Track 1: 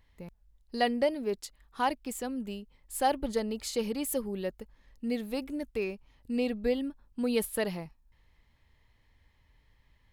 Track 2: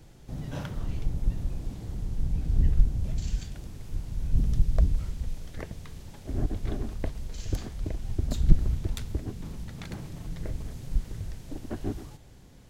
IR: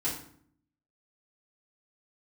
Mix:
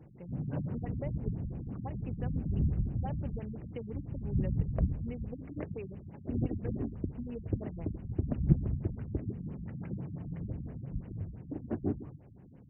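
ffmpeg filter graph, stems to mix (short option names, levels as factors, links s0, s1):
-filter_complex "[0:a]acompressor=threshold=0.0178:ratio=6,volume=0.668[s0];[1:a]tiltshelf=f=750:g=5.5,volume=0.75[s1];[s0][s1]amix=inputs=2:normalize=0,highpass=110,afftfilt=real='re*lt(b*sr/1024,240*pow(3100/240,0.5+0.5*sin(2*PI*5.9*pts/sr)))':imag='im*lt(b*sr/1024,240*pow(3100/240,0.5+0.5*sin(2*PI*5.9*pts/sr)))':win_size=1024:overlap=0.75"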